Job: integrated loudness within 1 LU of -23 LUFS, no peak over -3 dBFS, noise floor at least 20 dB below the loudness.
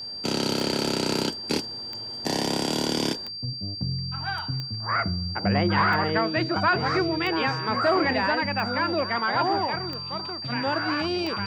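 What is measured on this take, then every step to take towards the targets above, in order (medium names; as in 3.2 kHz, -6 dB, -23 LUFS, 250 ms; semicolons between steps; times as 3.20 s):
clicks found 9; steady tone 4.7 kHz; tone level -33 dBFS; loudness -25.5 LUFS; peak level -12.0 dBFS; loudness target -23.0 LUFS
-> de-click; band-stop 4.7 kHz, Q 30; trim +2.5 dB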